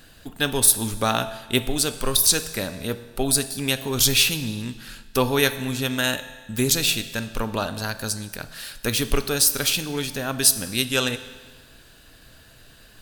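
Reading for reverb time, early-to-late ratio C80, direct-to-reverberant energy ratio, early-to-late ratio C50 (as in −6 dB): 1.5 s, 14.5 dB, 11.0 dB, 13.0 dB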